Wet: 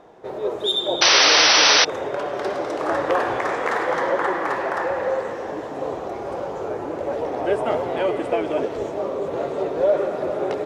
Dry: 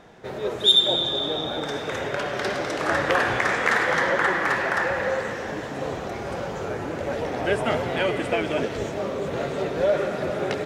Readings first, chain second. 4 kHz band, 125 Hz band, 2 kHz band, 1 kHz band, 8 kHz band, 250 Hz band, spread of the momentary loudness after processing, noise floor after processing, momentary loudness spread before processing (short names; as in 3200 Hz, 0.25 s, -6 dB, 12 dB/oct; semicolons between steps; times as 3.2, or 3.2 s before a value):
+4.0 dB, -6.5 dB, +1.0 dB, +3.5 dB, +15.5 dB, +0.5 dB, 16 LU, -31 dBFS, 10 LU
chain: band shelf 580 Hz +9.5 dB 2.3 oct; painted sound noise, 1.01–1.85, 470–6100 Hz -8 dBFS; gain -6.5 dB